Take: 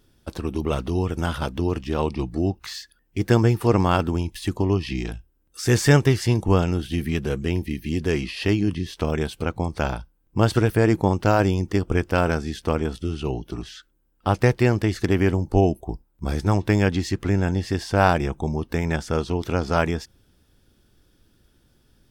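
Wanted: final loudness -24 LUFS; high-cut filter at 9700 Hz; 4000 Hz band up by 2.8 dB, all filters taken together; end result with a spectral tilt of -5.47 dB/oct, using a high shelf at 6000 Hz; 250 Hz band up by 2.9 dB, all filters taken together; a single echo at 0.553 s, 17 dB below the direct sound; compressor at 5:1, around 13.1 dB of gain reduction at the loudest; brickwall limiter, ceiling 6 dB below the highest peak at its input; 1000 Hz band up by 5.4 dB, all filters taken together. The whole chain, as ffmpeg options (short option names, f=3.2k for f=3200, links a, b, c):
-af "lowpass=9.7k,equalizer=f=250:t=o:g=3.5,equalizer=f=1k:t=o:g=7,equalizer=f=4k:t=o:g=5.5,highshelf=f=6k:g=-5.5,acompressor=threshold=-24dB:ratio=5,alimiter=limit=-17dB:level=0:latency=1,aecho=1:1:553:0.141,volume=6.5dB"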